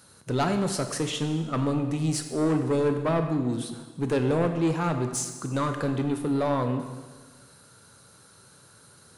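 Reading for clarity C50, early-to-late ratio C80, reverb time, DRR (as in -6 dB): 8.0 dB, 9.0 dB, 1.4 s, 6.0 dB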